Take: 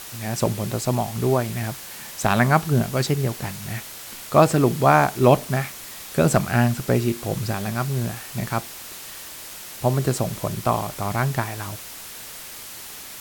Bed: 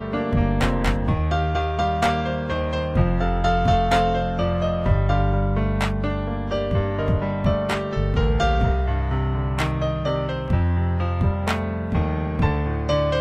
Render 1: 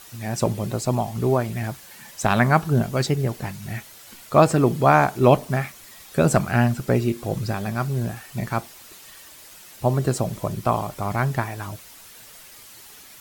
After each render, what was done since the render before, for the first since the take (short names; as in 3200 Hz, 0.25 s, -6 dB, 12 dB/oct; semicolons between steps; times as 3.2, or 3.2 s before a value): denoiser 9 dB, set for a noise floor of -38 dBFS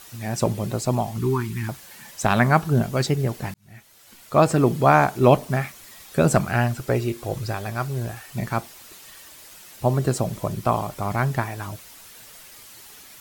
1.18–1.69 Chebyshev band-stop 380–930 Hz, order 3; 3.54–4.6 fade in; 6.53–8.28 bell 200 Hz -9.5 dB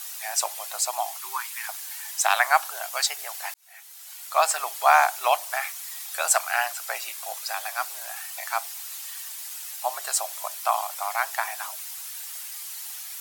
elliptic high-pass 720 Hz, stop band 70 dB; bell 13000 Hz +11 dB 2.3 oct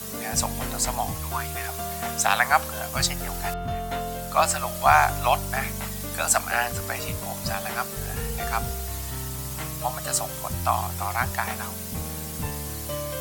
add bed -11.5 dB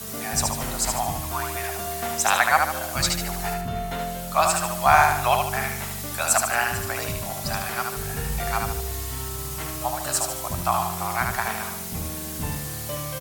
feedback echo 74 ms, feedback 43%, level -4 dB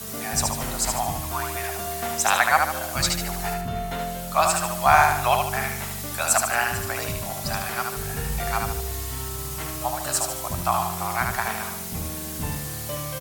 nothing audible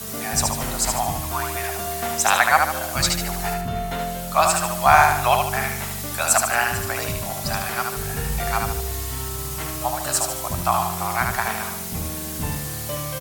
gain +2.5 dB